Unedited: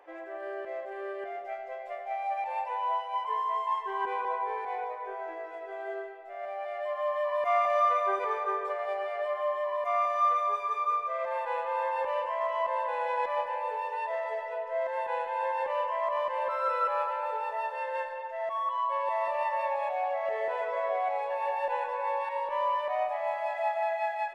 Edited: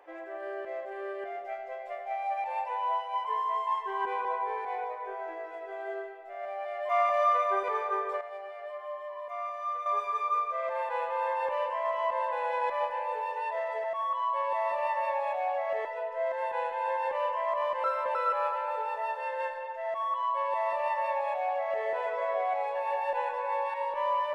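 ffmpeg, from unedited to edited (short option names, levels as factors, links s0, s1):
-filter_complex "[0:a]asplit=8[s0][s1][s2][s3][s4][s5][s6][s7];[s0]atrim=end=6.892[s8];[s1]atrim=start=7.448:end=8.772[s9];[s2]atrim=start=8.768:end=10.422,asetpts=PTS-STARTPTS,volume=0.376[s10];[s3]atrim=start=10.418:end=14.402[s11];[s4]atrim=start=18.398:end=20.412[s12];[s5]atrim=start=14.398:end=16.392[s13];[s6]atrim=start=16.388:end=16.702,asetpts=PTS-STARTPTS,areverse[s14];[s7]atrim=start=16.698[s15];[s8][s9]acrossfade=d=0.004:c1=hsin:c2=hsin[s16];[s16][s10]acrossfade=d=0.004:c1=hsin:c2=hsin[s17];[s17][s11]acrossfade=d=0.004:c1=hsin:c2=hsin[s18];[s18][s12]acrossfade=d=0.004:c1=hsin:c2=hsin[s19];[s19][s13]acrossfade=d=0.004:c1=hsin:c2=hsin[s20];[s20][s14]acrossfade=d=0.004:c1=hsin:c2=hsin[s21];[s21][s15]acrossfade=d=0.004:c1=hsin:c2=hsin"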